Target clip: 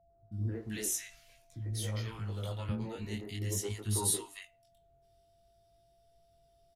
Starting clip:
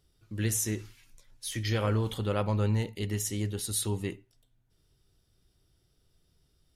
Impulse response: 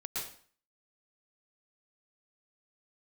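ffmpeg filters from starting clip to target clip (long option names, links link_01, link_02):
-filter_complex "[0:a]asettb=1/sr,asplit=3[link_01][link_02][link_03];[link_01]atrim=end=1.524[link_04];[link_02]atrim=start=1.52:end=2.69,asetpts=PTS-STARTPTS,afade=type=in:duration=0.004:curve=qsin,afade=type=out:start_time=1.166:duration=0.004:curve=qsin,acrossover=split=150|420|920[link_05][link_06][link_07][link_08];[link_05]acompressor=threshold=-36dB:ratio=4[link_09];[link_06]acompressor=threshold=-45dB:ratio=4[link_10];[link_07]acompressor=threshold=-45dB:ratio=4[link_11];[link_08]acompressor=threshold=-43dB:ratio=4[link_12];[link_09][link_10][link_11][link_12]amix=inputs=4:normalize=0[link_13];[link_03]atrim=start=2.686[link_14];[link_04][link_13]acrossfade=duration=0.004:curve1=hsin:curve2=qsin[link_15];[link_15][link_14]acrossfade=duration=0.004:curve1=qsin:curve2=hsin,asettb=1/sr,asplit=3[link_16][link_17][link_18];[link_16]atrim=end=3.374[link_19];[link_17]atrim=start=3.37:end=4.07,asetpts=PTS-STARTPTS,afade=type=in:duration=0.004:curve=qsin,afade=type=out:start_time=0.696:duration=0.004:curve=qsin,equalizer=frequency=400:width_type=o:width=0.67:gain=4,equalizer=frequency=1000:width_type=o:width=0.67:gain=10,equalizer=frequency=10000:width_type=o:width=0.67:gain=6[link_20];[link_18]atrim=start=4.066[link_21];[link_19][link_20]acrossfade=duration=0.004:curve1=hsin:curve2=qsin[link_22];[link_22][link_21]acrossfade=duration=0.004:curve1=qsin:curve2=hsin,acrossover=split=270|1300[link_23][link_24][link_25];[link_24]adelay=100[link_26];[link_25]adelay=320[link_27];[link_23][link_26][link_27]amix=inputs=3:normalize=0,flanger=delay=18.5:depth=5.2:speed=0.5,aeval=exprs='val(0)+0.000501*sin(2*PI*680*n/s)':channel_layout=same"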